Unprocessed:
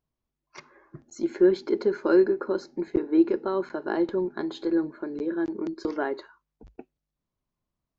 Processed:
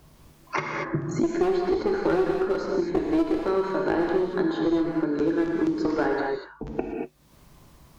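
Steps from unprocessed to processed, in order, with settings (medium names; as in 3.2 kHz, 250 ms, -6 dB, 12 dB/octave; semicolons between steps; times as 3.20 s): one-sided clip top -24.5 dBFS; gated-style reverb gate 260 ms flat, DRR 0 dB; three bands compressed up and down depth 100%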